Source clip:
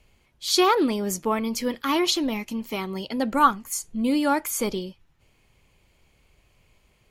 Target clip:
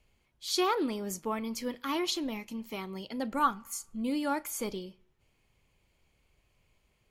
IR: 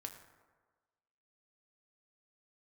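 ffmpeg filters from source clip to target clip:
-filter_complex "[0:a]asplit=2[link_01][link_02];[1:a]atrim=start_sample=2205,asetrate=66150,aresample=44100,adelay=36[link_03];[link_02][link_03]afir=irnorm=-1:irlink=0,volume=-12dB[link_04];[link_01][link_04]amix=inputs=2:normalize=0,volume=-9dB"

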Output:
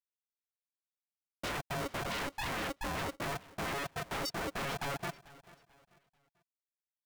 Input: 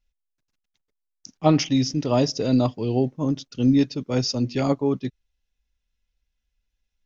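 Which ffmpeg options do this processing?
ffmpeg -i in.wav -af "afftfilt=real='re*gte(hypot(re,im),0.447)':imag='im*gte(hypot(re,im),0.447)':win_size=1024:overlap=0.75,lowshelf=frequency=480:gain=-8,aecho=1:1:7.2:0.42,alimiter=limit=-21.5dB:level=0:latency=1:release=16,acompressor=threshold=-39dB:ratio=6,aresample=16000,asoftclip=type=tanh:threshold=-39.5dB,aresample=44100,flanger=delay=22.5:depth=2:speed=1.4,aeval=exprs='0.01*sin(PI/2*5.01*val(0)/0.01)':channel_layout=same,aecho=1:1:440|880|1320:0.1|0.035|0.0123,aeval=exprs='val(0)*sgn(sin(2*PI*420*n/s))':channel_layout=same,volume=6.5dB" out.wav

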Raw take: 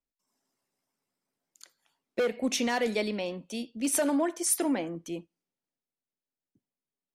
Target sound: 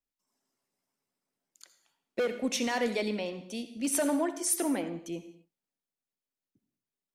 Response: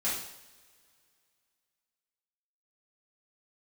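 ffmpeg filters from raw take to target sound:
-filter_complex "[0:a]asplit=2[link_01][link_02];[1:a]atrim=start_sample=2205,afade=type=out:start_time=0.26:duration=0.01,atrim=end_sample=11907,adelay=62[link_03];[link_02][link_03]afir=irnorm=-1:irlink=0,volume=-17.5dB[link_04];[link_01][link_04]amix=inputs=2:normalize=0,volume=-2dB"

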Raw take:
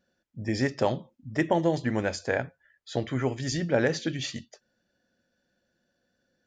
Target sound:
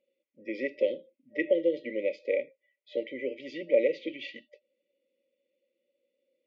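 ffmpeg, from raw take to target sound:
ffmpeg -i in.wav -af "highpass=frequency=390:width=0.5412,highpass=frequency=390:width=1.3066,equalizer=frequency=410:width_type=q:width=4:gain=-8,equalizer=frequency=780:width_type=q:width=4:gain=10,equalizer=frequency=1600:width_type=q:width=4:gain=-7,lowpass=frequency=2500:width=0.5412,lowpass=frequency=2500:width=1.3066,afftfilt=real='re*(1-between(b*sr/4096,600,1900))':imag='im*(1-between(b*sr/4096,600,1900))':win_size=4096:overlap=0.75,volume=4dB" out.wav

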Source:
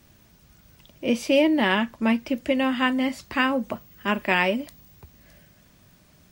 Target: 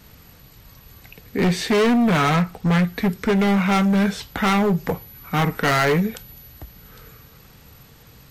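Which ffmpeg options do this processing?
ffmpeg -i in.wav -af "asetrate=33516,aresample=44100,volume=23.5dB,asoftclip=hard,volume=-23.5dB,volume=8.5dB" out.wav

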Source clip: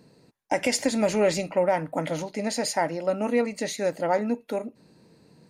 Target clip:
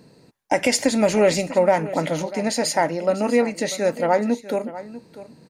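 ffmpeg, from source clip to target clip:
ffmpeg -i in.wav -af "aecho=1:1:644:0.168,volume=5dB" out.wav

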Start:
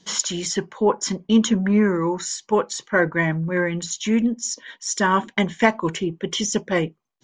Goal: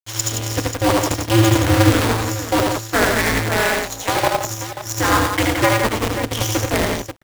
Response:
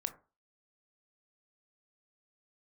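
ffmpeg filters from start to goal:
-filter_complex "[0:a]acrusher=bits=4:dc=4:mix=0:aa=0.000001,asettb=1/sr,asplit=3[link_01][link_02][link_03];[link_01]atrim=end=3.494[link_04];[link_02]atrim=start=3.49:end=4.34,asetpts=PTS-STARTPTS,afade=type=in:duration=0.004:curve=qsin,afade=type=out:start_time=0.846:duration=0.004:curve=qsin,highpass=frequency=670:width_type=q:width=4.9[link_05];[link_03]atrim=start=4.336[link_06];[link_04][link_05]acrossfade=duration=0.004:curve1=hsin:curve2=qsin[link_07];[link_07][link_06]acrossfade=duration=0.004:curve1=qsin:curve2=hsin,asplit=2[link_08][link_09];[link_09]aecho=0:1:76|86|113|172|536:0.631|0.447|0.282|0.531|0.316[link_10];[link_08][link_10]amix=inputs=2:normalize=0,aeval=exprs='val(0)*sgn(sin(2*PI*110*n/s))':channel_layout=same"

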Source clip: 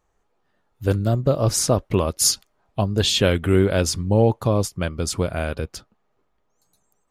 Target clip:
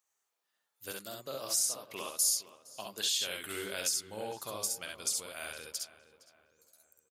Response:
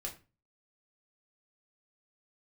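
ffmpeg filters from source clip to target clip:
-filter_complex "[0:a]aderivative,aecho=1:1:51|66:0.422|0.708,acompressor=threshold=-32dB:ratio=2.5,asettb=1/sr,asplit=3[link_01][link_02][link_03];[link_01]atrim=end=0.914[link_04];[link_02]atrim=start=0.91:end=3.18,asetpts=PTS-STARTPTS,afade=type=in:duration=0.004:curve=qsin,afade=type=out:start_time=2.266:duration=0.004:curve=qsin,highpass=150[link_05];[link_03]atrim=start=3.176[link_06];[link_04][link_05]acrossfade=duration=0.004:curve1=hsin:curve2=qsin[link_07];[link_07][link_06]acrossfade=duration=0.004:curve1=qsin:curve2=hsin,asplit=2[link_08][link_09];[link_09]adelay=463,lowpass=frequency=2200:poles=1,volume=-14.5dB,asplit=2[link_10][link_11];[link_11]adelay=463,lowpass=frequency=2200:poles=1,volume=0.46,asplit=2[link_12][link_13];[link_13]adelay=463,lowpass=frequency=2200:poles=1,volume=0.46,asplit=2[link_14][link_15];[link_15]adelay=463,lowpass=frequency=2200:poles=1,volume=0.46[link_16];[link_08][link_10][link_12][link_14][link_16]amix=inputs=5:normalize=0"

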